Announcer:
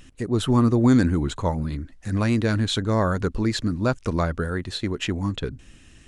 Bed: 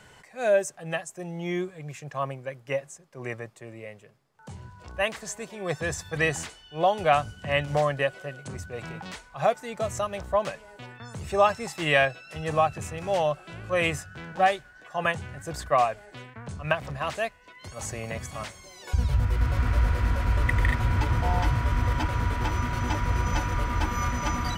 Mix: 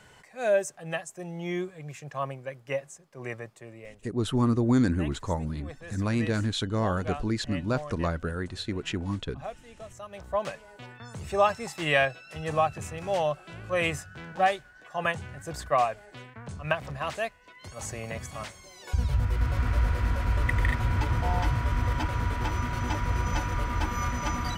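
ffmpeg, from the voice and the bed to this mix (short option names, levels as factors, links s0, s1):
-filter_complex "[0:a]adelay=3850,volume=0.531[s0];[1:a]volume=3.55,afade=t=out:st=3.58:d=0.74:silence=0.223872,afade=t=in:st=10:d=0.51:silence=0.223872[s1];[s0][s1]amix=inputs=2:normalize=0"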